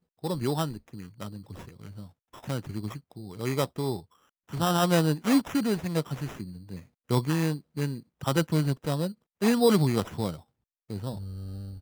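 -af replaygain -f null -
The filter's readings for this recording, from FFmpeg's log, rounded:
track_gain = +7.9 dB
track_peak = 0.187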